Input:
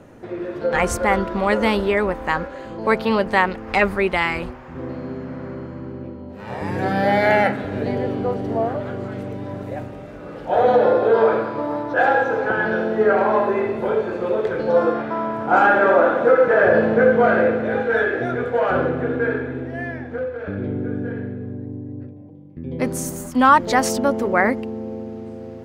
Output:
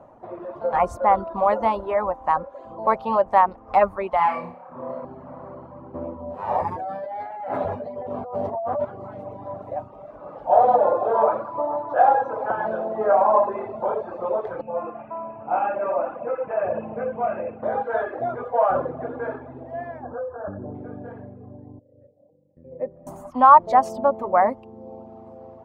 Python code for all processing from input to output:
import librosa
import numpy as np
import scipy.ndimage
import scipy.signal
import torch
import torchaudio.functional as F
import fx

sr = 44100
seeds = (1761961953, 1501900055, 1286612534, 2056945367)

y = fx.chain(x, sr, fx.highpass(hz=110.0, slope=24),
    fx.high_shelf(hz=6500.0, db=-5.5),
    fx.room_flutter(wall_m=4.9, rt60_s=0.68), at=(4.17, 5.05))
y = fx.chain(y, sr, fx.high_shelf(hz=7400.0, db=5.0),
    fx.doubler(ms=12.0, db=-2.5),
    fx.over_compress(threshold_db=-26.0, ratio=-1.0), at=(5.94, 8.85))
y = fx.chain(y, sr, fx.ladder_lowpass(hz=2700.0, resonance_pct=85),
    fx.low_shelf(hz=430.0, db=11.5), at=(14.61, 17.63))
y = fx.chain(y, sr, fx.brickwall_lowpass(high_hz=1800.0),
    fx.env_flatten(amount_pct=50), at=(20.03, 20.75))
y = fx.chain(y, sr, fx.formant_cascade(vowel='e'),
    fx.low_shelf(hz=380.0, db=12.0), at=(21.79, 23.07))
y = fx.band_shelf(y, sr, hz=830.0, db=14.5, octaves=1.3)
y = fx.dereverb_blind(y, sr, rt60_s=0.81)
y = fx.high_shelf(y, sr, hz=2600.0, db=-11.5)
y = F.gain(torch.from_numpy(y), -9.0).numpy()